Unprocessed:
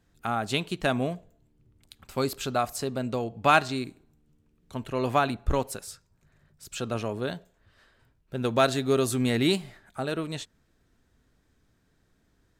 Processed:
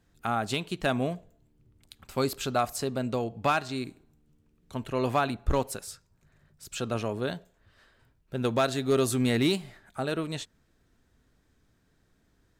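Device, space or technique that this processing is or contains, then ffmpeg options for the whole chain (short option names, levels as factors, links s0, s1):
limiter into clipper: -af "alimiter=limit=0.211:level=0:latency=1:release=343,asoftclip=type=hard:threshold=0.15"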